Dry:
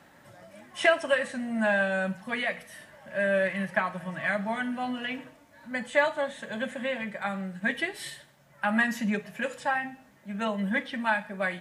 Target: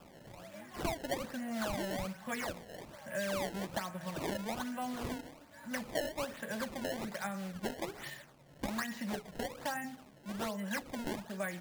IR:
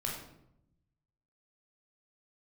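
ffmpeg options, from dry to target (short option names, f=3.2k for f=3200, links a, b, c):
-filter_complex "[0:a]acrossover=split=410|2800|6500[a][b][c][d];[a]acompressor=threshold=-42dB:ratio=4[e];[b]acompressor=threshold=-39dB:ratio=4[f];[c]acompressor=threshold=-57dB:ratio=4[g];[d]acompressor=threshold=-55dB:ratio=4[h];[e][f][g][h]amix=inputs=4:normalize=0,acrusher=samples=21:mix=1:aa=0.000001:lfo=1:lforange=33.6:lforate=1.2"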